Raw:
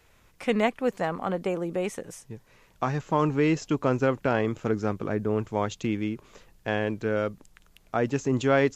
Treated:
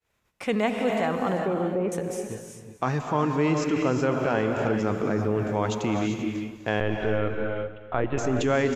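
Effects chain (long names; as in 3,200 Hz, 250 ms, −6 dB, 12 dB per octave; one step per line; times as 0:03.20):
0:01.39–0:01.92: low-pass filter 1,200 Hz 12 dB per octave
downward expander −49 dBFS
high-pass filter 63 Hz 6 dB per octave
0:06.80–0:08.18: linear-prediction vocoder at 8 kHz pitch kept
on a send: repeating echo 248 ms, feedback 34%, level −15 dB
on the sum: reverb whose tail is shaped and stops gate 420 ms rising, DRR 4 dB
in parallel at −3 dB: compressor whose output falls as the input rises −28 dBFS, ratio −1
on the sum: level −3 dB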